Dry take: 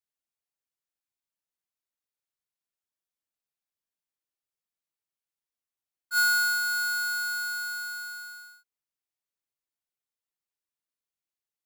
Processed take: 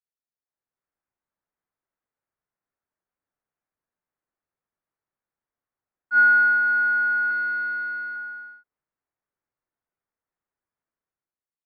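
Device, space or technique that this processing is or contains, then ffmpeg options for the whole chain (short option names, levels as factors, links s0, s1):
action camera in a waterproof case: -filter_complex "[0:a]asettb=1/sr,asplit=3[s0][s1][s2];[s0]atrim=end=7.304[s3];[s1]atrim=start=7.3:end=8.16,asetpts=PTS-STARTPTS,afade=t=in:d=0.004:c=qsin,afade=t=out:st=0.856:d=0.004:c=qsin,aecho=1:1:5.3:0.75,atrim=end_sample=37926[s4];[s2]atrim=start=8.156[s5];[s3][s4]acrossfade=d=0.004:c1=hsin:c2=qsin[s6];[s6][s5]acrossfade=d=0.004:c1=qsin:c2=hsin,lowpass=f=1800:w=0.5412,lowpass=f=1800:w=1.3066,dynaudnorm=f=140:g=9:m=5.31,volume=0.531" -ar 44100 -c:a aac -b:a 48k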